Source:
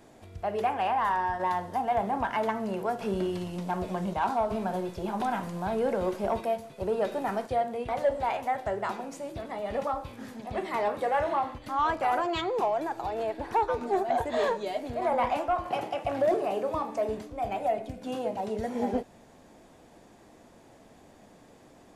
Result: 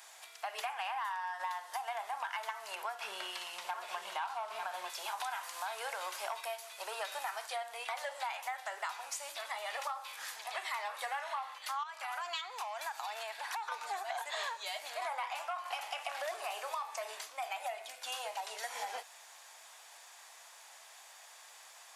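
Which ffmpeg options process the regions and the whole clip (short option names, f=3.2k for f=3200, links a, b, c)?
-filter_complex "[0:a]asettb=1/sr,asplit=3[a][b][c];[a]atrim=end=2.754[d];[b]atrim=start=2.75:end=4.9,asetpts=PTS-STARTPTS,afade=t=in:d=0.004:c=qsin,afade=t=out:st=2.146:d=0.004:c=qsin,bass=f=250:g=11,treble=f=4k:g=-7,aecho=1:1:897:0.422,atrim=end_sample=94815[e];[c]atrim=start=4.896[f];[d][e]acrossfade=d=0.004:c1=hsin:c2=qsin[g];[g][f]acrossfade=d=0.004:c1=qsin:c2=hsin,asettb=1/sr,asplit=3[h][i][j];[h]atrim=end=11.834[k];[i]atrim=start=11.83:end=13.72,asetpts=PTS-STARTPTS,afade=t=in:d=0.004:c=qsin,afade=t=out:st=1.886:d=0.004:c=qsin,highpass=f=590:p=1,acompressor=threshold=-32dB:ratio=10:attack=3.2:release=140:knee=1:detection=peak[l];[j]atrim=start=13.716[m];[k][l]acrossfade=d=0.004:c1=hsin:c2=qsin[n];[n][m]acrossfade=d=0.004:c1=qsin:c2=hsin,highpass=f=870:w=0.5412,highpass=f=870:w=1.3066,highshelf=f=2.2k:g=10.5,acompressor=threshold=-38dB:ratio=6,volume=2dB"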